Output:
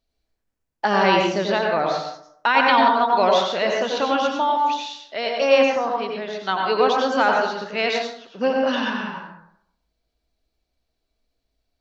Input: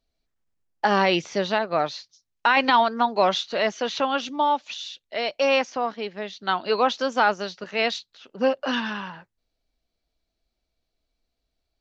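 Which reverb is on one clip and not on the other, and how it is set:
dense smooth reverb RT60 0.7 s, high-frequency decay 0.45×, pre-delay 80 ms, DRR 0 dB

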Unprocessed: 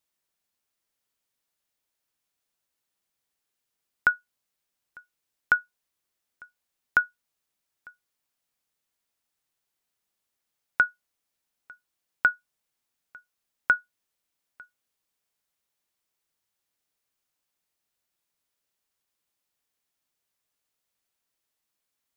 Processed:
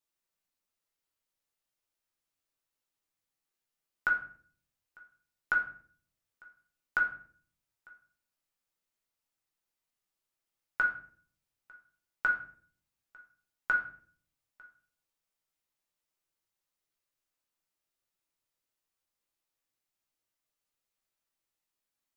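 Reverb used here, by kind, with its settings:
rectangular room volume 57 cubic metres, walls mixed, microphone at 0.76 metres
level −9 dB

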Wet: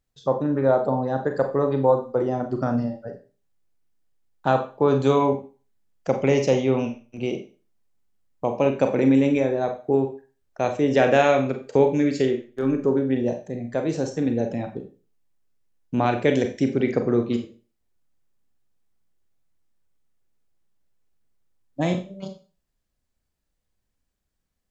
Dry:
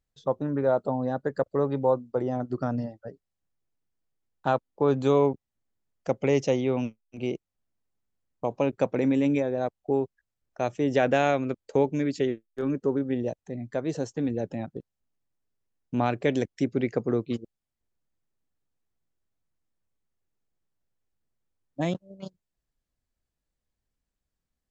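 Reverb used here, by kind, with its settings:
four-comb reverb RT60 0.35 s, combs from 30 ms, DRR 5 dB
level +4 dB

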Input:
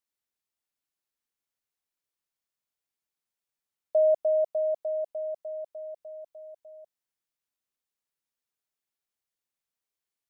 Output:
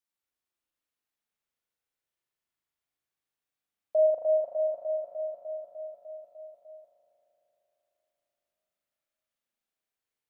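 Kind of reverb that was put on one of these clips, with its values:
spring reverb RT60 3.7 s, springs 38 ms, chirp 25 ms, DRR −3 dB
level −3 dB

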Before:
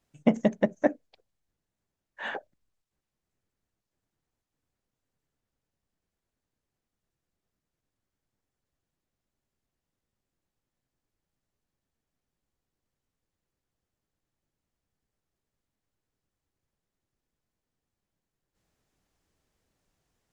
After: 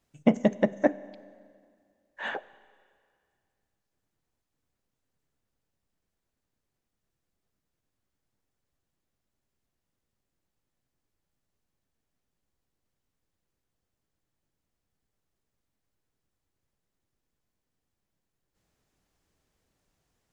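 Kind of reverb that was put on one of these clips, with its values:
four-comb reverb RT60 2.1 s, combs from 31 ms, DRR 18.5 dB
level +1 dB

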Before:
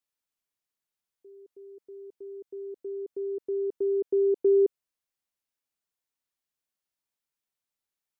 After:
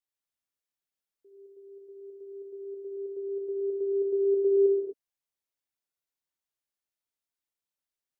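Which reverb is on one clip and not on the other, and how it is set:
reverb whose tail is shaped and stops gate 280 ms flat, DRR −1.5 dB
level −7.5 dB

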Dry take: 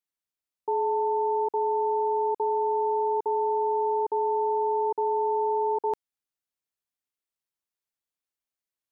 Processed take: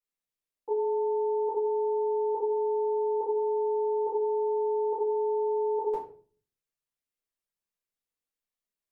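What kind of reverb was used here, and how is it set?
rectangular room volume 36 cubic metres, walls mixed, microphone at 1.9 metres
level −12 dB

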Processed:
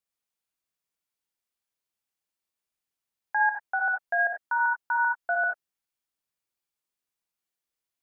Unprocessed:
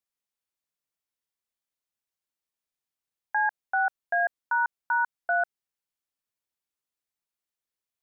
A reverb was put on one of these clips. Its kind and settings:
reverb whose tail is shaped and stops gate 110 ms rising, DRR 1 dB
level −1 dB

